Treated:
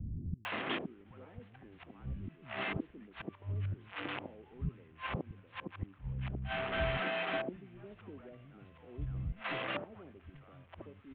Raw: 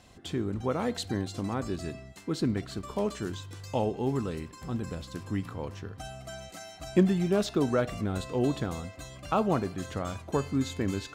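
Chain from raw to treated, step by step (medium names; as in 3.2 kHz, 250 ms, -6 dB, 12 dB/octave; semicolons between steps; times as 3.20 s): one-bit delta coder 16 kbps, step -37 dBFS; inverted gate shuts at -31 dBFS, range -31 dB; three bands offset in time lows, highs, mids 450/520 ms, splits 200/690 Hz; trim +9 dB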